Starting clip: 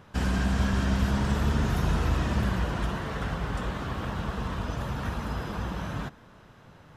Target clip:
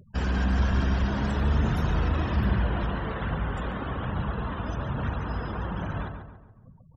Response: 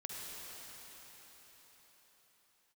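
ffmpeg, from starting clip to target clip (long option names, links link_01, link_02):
-filter_complex "[0:a]asoftclip=type=tanh:threshold=-16.5dB,aphaser=in_gain=1:out_gain=1:delay=4.3:decay=0.27:speed=1.2:type=triangular,afftfilt=real='re*gte(hypot(re,im),0.00891)':imag='im*gte(hypot(re,im),0.00891)':win_size=1024:overlap=0.75,asplit=2[link_01][link_02];[link_02]adelay=140,lowpass=frequency=2100:poles=1,volume=-6.5dB,asplit=2[link_03][link_04];[link_04]adelay=140,lowpass=frequency=2100:poles=1,volume=0.46,asplit=2[link_05][link_06];[link_06]adelay=140,lowpass=frequency=2100:poles=1,volume=0.46,asplit=2[link_07][link_08];[link_08]adelay=140,lowpass=frequency=2100:poles=1,volume=0.46,asplit=2[link_09][link_10];[link_10]adelay=140,lowpass=frequency=2100:poles=1,volume=0.46[link_11];[link_03][link_05][link_07][link_09][link_11]amix=inputs=5:normalize=0[link_12];[link_01][link_12]amix=inputs=2:normalize=0"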